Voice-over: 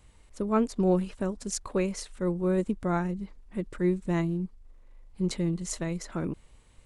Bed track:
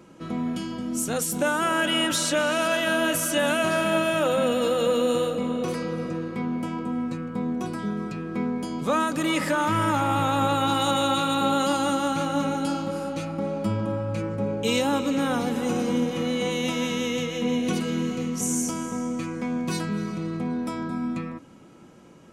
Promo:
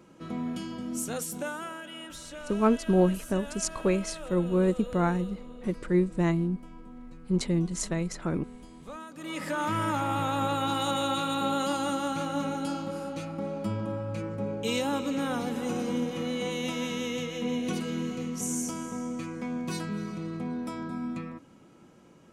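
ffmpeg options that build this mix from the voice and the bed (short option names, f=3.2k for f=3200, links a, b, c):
-filter_complex "[0:a]adelay=2100,volume=2dB[a];[1:a]volume=8.5dB,afade=t=out:st=0.95:d=0.87:silence=0.199526,afade=t=in:st=9.15:d=0.5:silence=0.211349[b];[a][b]amix=inputs=2:normalize=0"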